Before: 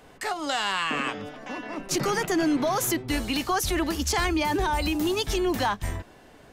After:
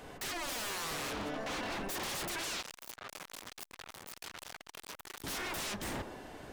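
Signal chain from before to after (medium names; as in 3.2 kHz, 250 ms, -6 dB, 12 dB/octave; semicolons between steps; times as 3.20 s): peak limiter -22 dBFS, peak gain reduction 5 dB; 2.43–3.31 s: painted sound fall 290–2600 Hz -34 dBFS; wavefolder -36 dBFS; feedback echo behind a band-pass 65 ms, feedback 66%, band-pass 530 Hz, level -7 dB; 2.61–5.24 s: transformer saturation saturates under 2.8 kHz; trim +2 dB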